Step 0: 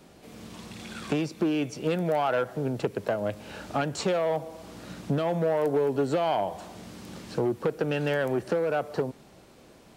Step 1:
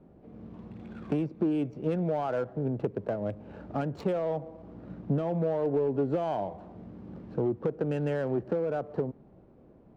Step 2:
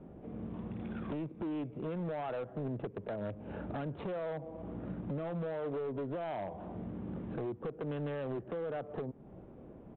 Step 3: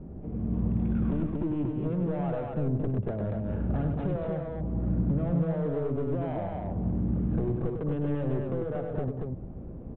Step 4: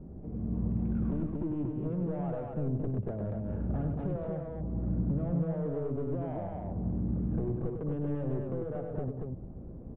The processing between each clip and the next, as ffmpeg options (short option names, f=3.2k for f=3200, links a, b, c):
-af "adynamicsmooth=sensitivity=4.5:basefreq=1.4k,tiltshelf=f=820:g=6.5,volume=-6dB"
-af "acompressor=threshold=-41dB:ratio=3,aresample=8000,asoftclip=type=hard:threshold=-38dB,aresample=44100,volume=4.5dB"
-filter_complex "[0:a]aemphasis=mode=reproduction:type=riaa,asplit=2[a][b];[b]aecho=0:1:99.13|233.2:0.501|0.708[c];[a][c]amix=inputs=2:normalize=0"
-af "lowpass=f=1.2k:p=1,volume=-3.5dB"